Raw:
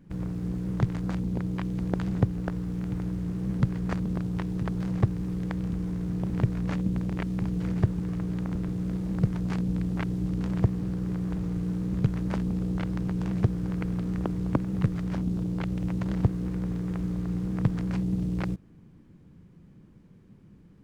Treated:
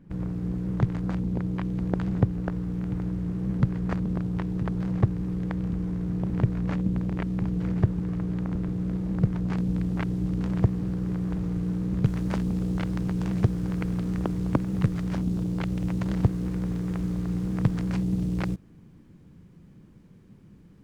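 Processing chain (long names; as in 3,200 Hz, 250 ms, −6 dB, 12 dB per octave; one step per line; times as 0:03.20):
high-shelf EQ 3,400 Hz −8 dB, from 0:09.57 −3 dB, from 0:12.05 +3.5 dB
level +1.5 dB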